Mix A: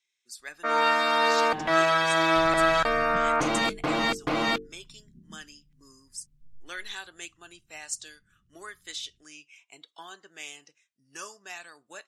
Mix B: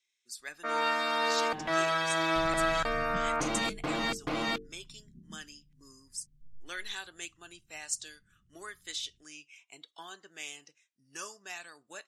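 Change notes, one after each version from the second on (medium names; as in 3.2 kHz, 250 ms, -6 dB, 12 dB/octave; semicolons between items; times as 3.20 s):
first sound -4.5 dB; master: add peaking EQ 920 Hz -2.5 dB 2.9 oct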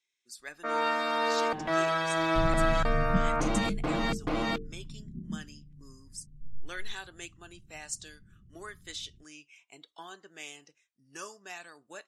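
second sound +9.5 dB; master: add tilt shelf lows +3.5 dB, about 1.4 kHz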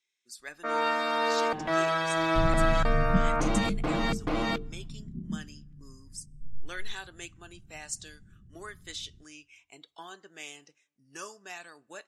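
reverb: on, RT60 1.5 s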